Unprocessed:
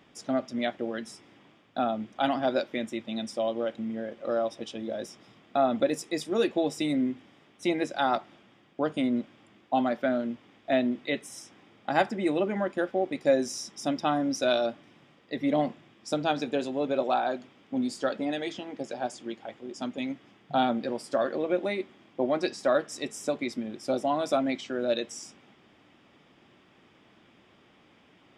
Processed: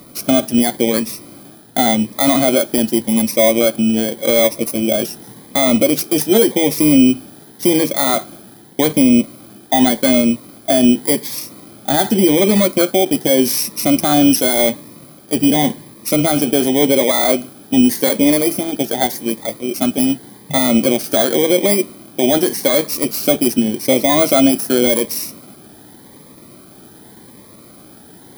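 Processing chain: bit-reversed sample order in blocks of 16 samples; loudness maximiser +21 dB; Shepard-style phaser rising 0.87 Hz; trim -2 dB

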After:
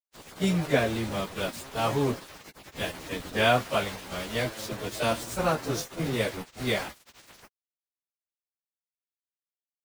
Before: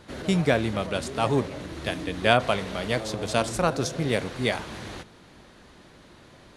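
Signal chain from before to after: small samples zeroed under -29 dBFS; plain phase-vocoder stretch 1.5×

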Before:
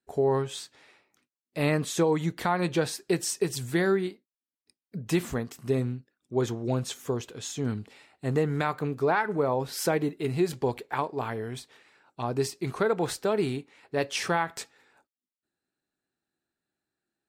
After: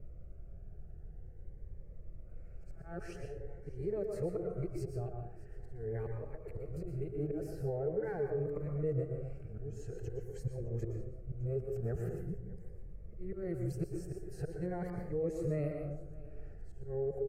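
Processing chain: reverse the whole clip; in parallel at -9 dB: saturation -28 dBFS, distortion -8 dB; on the sum: dynamic bell 4.3 kHz, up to +6 dB, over -53 dBFS, Q 5.6; slow attack 384 ms; plate-style reverb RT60 0.68 s, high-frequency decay 0.5×, pre-delay 105 ms, DRR 4 dB; added noise brown -47 dBFS; static phaser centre 970 Hz, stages 6; compression 2.5:1, threshold -34 dBFS, peak gain reduction 9.5 dB; FFT filter 310 Hz 0 dB, 500 Hz -3 dB, 1.1 kHz -13 dB, 5.6 kHz -23 dB; delay 610 ms -19.5 dB; Shepard-style phaser rising 0.45 Hz; trim +3 dB

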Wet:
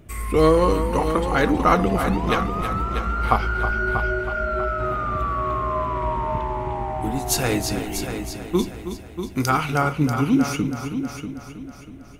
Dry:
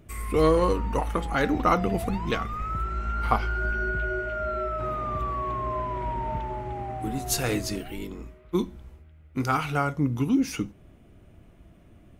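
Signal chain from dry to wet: 8.59–9.50 s: treble shelf 4 kHz +11 dB; multi-head delay 320 ms, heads first and second, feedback 43%, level -10.5 dB; trim +4.5 dB

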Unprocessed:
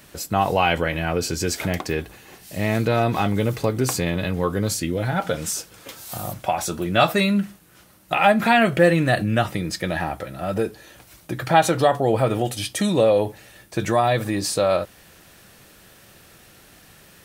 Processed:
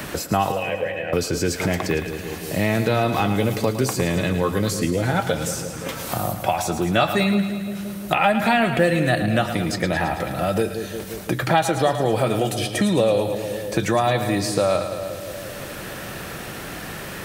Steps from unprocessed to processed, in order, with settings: 0.52–1.13 s: vowel filter e; two-band feedback delay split 560 Hz, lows 174 ms, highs 109 ms, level -10 dB; three bands compressed up and down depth 70%

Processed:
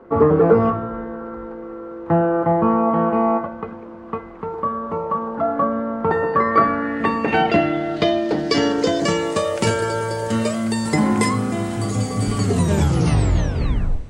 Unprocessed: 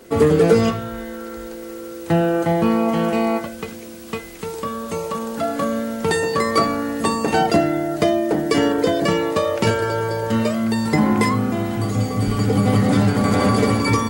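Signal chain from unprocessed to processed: tape stop on the ending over 1.72 s; low-pass sweep 1.1 kHz -> 8.8 kHz, 5.99–9.47 s; Schroeder reverb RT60 3.5 s, combs from 30 ms, DRR 16.5 dB; trim -1 dB

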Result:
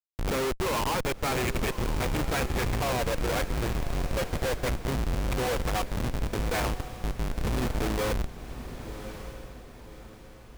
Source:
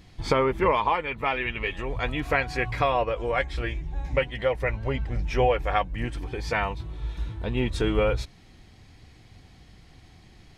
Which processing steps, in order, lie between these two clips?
Schmitt trigger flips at -28 dBFS; echo that smears into a reverb 1112 ms, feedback 42%, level -11 dB

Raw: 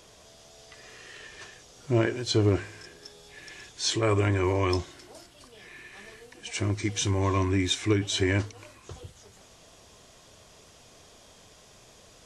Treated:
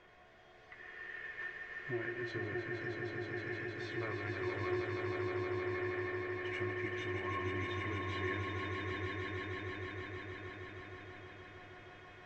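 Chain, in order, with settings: compression, threshold -33 dBFS, peak gain reduction 14 dB; resonant low-pass 1.9 kHz, resonance Q 3.2; feedback comb 360 Hz, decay 0.2 s, harmonics all, mix 80%; on a send: echo with a slow build-up 157 ms, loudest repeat 5, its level -5.5 dB; on the sum: trim +2.5 dB

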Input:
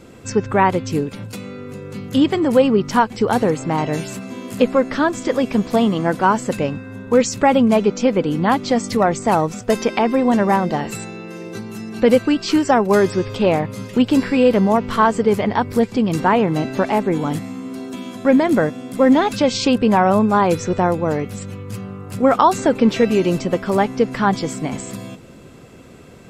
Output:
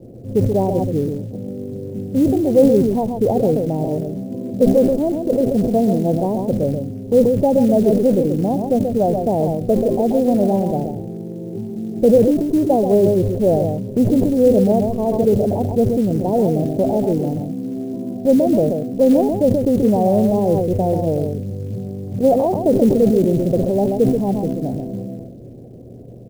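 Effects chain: mains buzz 120 Hz, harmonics 3, -49 dBFS -8 dB/octave; steep low-pass 690 Hz 48 dB/octave; on a send: delay 133 ms -7.5 dB; on the sum: short-mantissa float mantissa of 4-bit; dynamic bell 270 Hz, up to -4 dB, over -25 dBFS, Q 0.82; decay stretcher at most 42 dB/s; trim +2.5 dB

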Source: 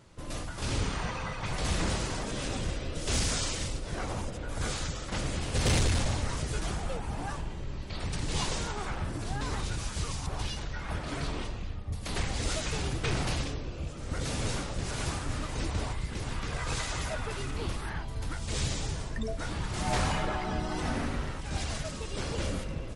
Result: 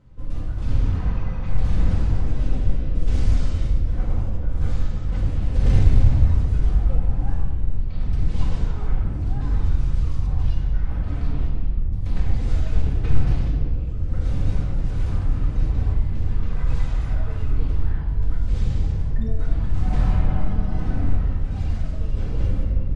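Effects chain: RIAA curve playback; simulated room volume 1400 m³, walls mixed, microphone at 2 m; trim -8 dB

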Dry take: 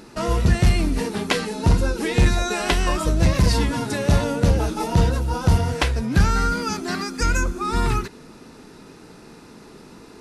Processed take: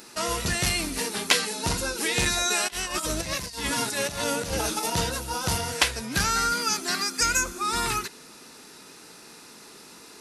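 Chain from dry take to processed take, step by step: tilt EQ +3.5 dB/octave; 2.67–4.90 s: compressor with a negative ratio -26 dBFS, ratio -0.5; trim -2.5 dB

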